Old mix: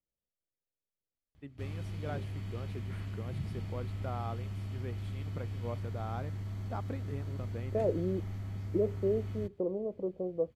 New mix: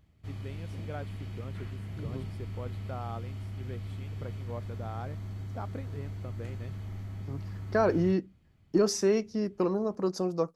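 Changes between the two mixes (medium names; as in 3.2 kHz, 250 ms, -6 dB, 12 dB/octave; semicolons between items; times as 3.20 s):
first voice: entry -1.15 s; second voice: remove four-pole ladder low-pass 630 Hz, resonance 55%; background: entry -1.35 s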